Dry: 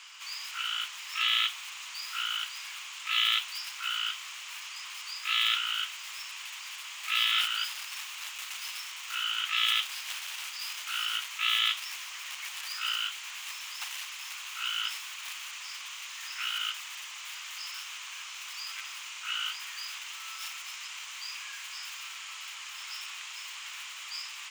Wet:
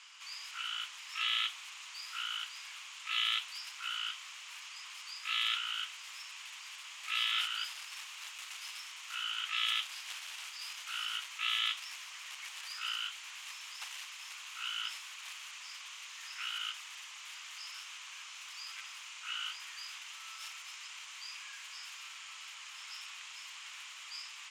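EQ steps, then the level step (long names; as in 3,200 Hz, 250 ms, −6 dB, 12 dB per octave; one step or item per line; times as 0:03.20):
low-pass filter 11,000 Hz 12 dB per octave
dynamic equaliser 220 Hz, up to +4 dB, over −57 dBFS, Q 0.86
−6.0 dB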